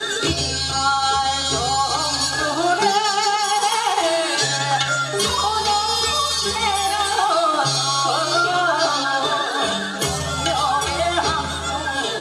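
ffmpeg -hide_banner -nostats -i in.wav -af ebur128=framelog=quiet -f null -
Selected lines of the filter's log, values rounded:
Integrated loudness:
  I:         -18.9 LUFS
  Threshold: -28.9 LUFS
Loudness range:
  LRA:         1.4 LU
  Threshold: -38.6 LUFS
  LRA low:   -19.5 LUFS
  LRA high:  -18.1 LUFS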